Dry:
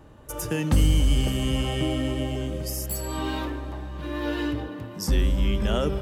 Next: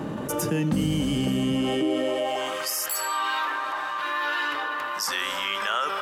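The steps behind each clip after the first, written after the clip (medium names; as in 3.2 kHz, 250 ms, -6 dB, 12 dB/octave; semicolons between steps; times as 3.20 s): treble shelf 5.4 kHz -5 dB; high-pass sweep 190 Hz -> 1.2 kHz, 1.53–2.61 s; level flattener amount 70%; trim -5.5 dB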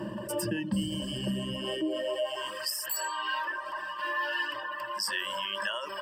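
reverb removal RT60 1.1 s; rippled EQ curve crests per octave 1.3, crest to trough 17 dB; trim -7.5 dB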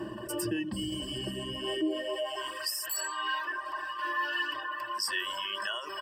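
comb 2.7 ms, depth 64%; trim -2 dB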